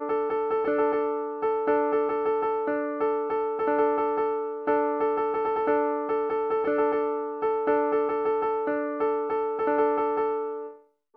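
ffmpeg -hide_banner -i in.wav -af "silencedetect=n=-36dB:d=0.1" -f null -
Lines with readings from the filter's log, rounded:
silence_start: 10.71
silence_end: 11.17 | silence_duration: 0.46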